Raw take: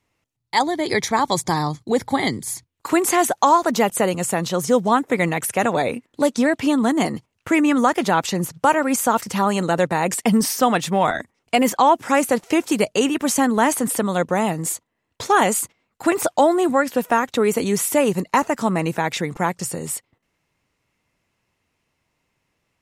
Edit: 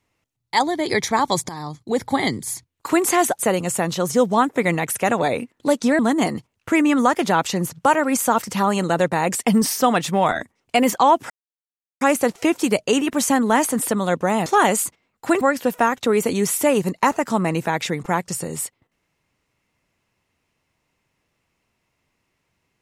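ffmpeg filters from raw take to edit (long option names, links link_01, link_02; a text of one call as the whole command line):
ffmpeg -i in.wav -filter_complex "[0:a]asplit=7[link_01][link_02][link_03][link_04][link_05][link_06][link_07];[link_01]atrim=end=1.49,asetpts=PTS-STARTPTS,afade=type=out:start_time=1.486:duration=0.004:curve=hsin:silence=0.16788[link_08];[link_02]atrim=start=1.49:end=3.392,asetpts=PTS-STARTPTS,afade=type=in:duration=0.61:silence=0.16788[link_09];[link_03]atrim=start=3.928:end=6.532[link_10];[link_04]atrim=start=6.778:end=12.09,asetpts=PTS-STARTPTS,afade=type=out:start_time=5.308:duration=0.004:curve=hsin,apad=pad_dur=0.71[link_11];[link_05]atrim=start=12.09:end=14.542,asetpts=PTS-STARTPTS,afade=type=in:duration=0.004:curve=hsin[link_12];[link_06]atrim=start=15.228:end=16.182[link_13];[link_07]atrim=start=16.718[link_14];[link_08][link_09]concat=n=2:v=0:a=1[link_15];[link_15][link_10]acrossfade=duration=0.004:curve1=hsin:curve2=hsin[link_16];[link_11][link_12]concat=n=2:v=0:a=1[link_17];[link_16][link_17]acrossfade=duration=0.004:curve1=hsin:curve2=hsin[link_18];[link_18][link_13]acrossfade=duration=0.004:curve1=hsin:curve2=hsin[link_19];[link_19][link_14]acrossfade=duration=0.004:curve1=hsin:curve2=hsin" out.wav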